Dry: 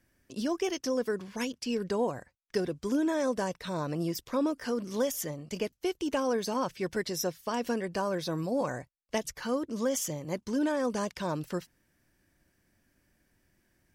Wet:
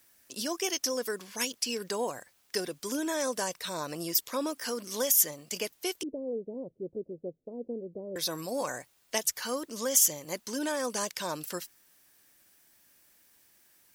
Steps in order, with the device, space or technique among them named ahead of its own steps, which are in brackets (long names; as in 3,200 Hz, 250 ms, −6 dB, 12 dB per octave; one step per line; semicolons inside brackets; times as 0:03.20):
turntable without a phono preamp (RIAA equalisation recording; white noise bed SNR 35 dB)
0:06.03–0:08.16: Butterworth low-pass 520 Hz 36 dB per octave